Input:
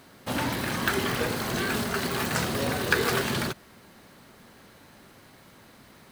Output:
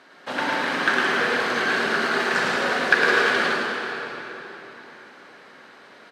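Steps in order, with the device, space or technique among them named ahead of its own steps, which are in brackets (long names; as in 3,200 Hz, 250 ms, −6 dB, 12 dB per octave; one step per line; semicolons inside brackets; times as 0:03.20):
station announcement (band-pass filter 360–4,600 Hz; parametric band 1,600 Hz +6 dB 0.47 octaves; loudspeakers that aren't time-aligned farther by 37 metres −3 dB, 59 metres −12 dB; convolution reverb RT60 3.9 s, pre-delay 30 ms, DRR 0.5 dB)
level +1.5 dB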